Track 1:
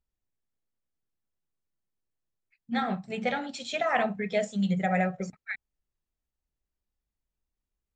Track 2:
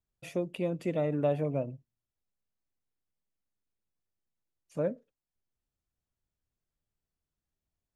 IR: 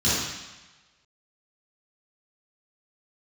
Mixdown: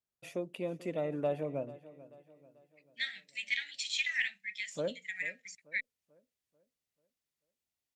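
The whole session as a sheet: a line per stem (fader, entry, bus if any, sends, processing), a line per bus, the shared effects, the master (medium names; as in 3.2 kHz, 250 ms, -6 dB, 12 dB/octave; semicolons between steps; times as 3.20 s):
+3.0 dB, 0.25 s, no send, no echo send, elliptic high-pass 1.9 kHz, stop band 40 dB; auto duck -6 dB, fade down 0.55 s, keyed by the second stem
-3.0 dB, 0.00 s, no send, echo send -18 dB, high-pass 280 Hz 6 dB/octave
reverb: none
echo: feedback delay 439 ms, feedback 44%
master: Chebyshev shaper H 2 -31 dB, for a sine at -19.5 dBFS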